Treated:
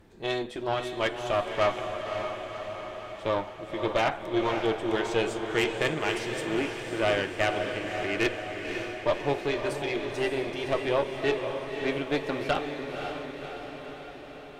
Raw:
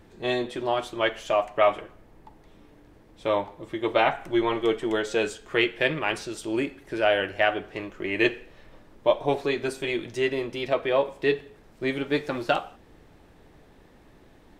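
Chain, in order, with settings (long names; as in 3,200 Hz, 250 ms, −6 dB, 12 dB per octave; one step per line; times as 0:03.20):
tube saturation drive 18 dB, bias 0.65
feedback delay with all-pass diffusion 545 ms, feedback 64%, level −6 dB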